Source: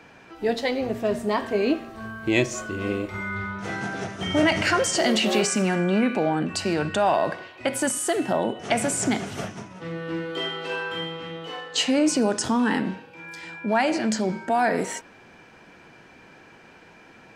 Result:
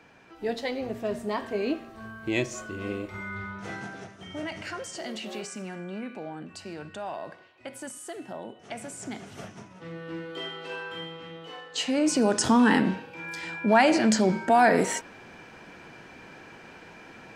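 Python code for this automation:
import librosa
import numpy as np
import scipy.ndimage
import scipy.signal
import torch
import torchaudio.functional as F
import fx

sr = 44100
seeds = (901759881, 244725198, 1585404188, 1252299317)

y = fx.gain(x, sr, db=fx.line((3.72, -6.0), (4.24, -15.0), (8.98, -15.0), (9.62, -7.0), (11.76, -7.0), (12.51, 2.5)))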